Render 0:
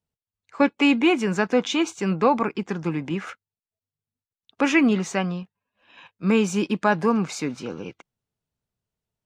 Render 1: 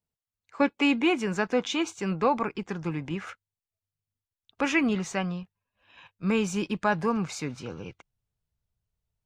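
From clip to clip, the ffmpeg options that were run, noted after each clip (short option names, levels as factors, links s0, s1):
-af "asubboost=boost=5.5:cutoff=100,volume=0.631"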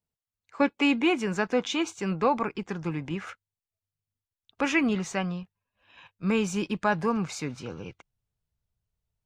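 -af anull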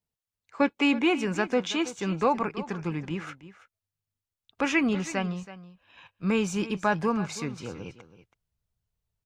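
-af "aecho=1:1:326:0.168"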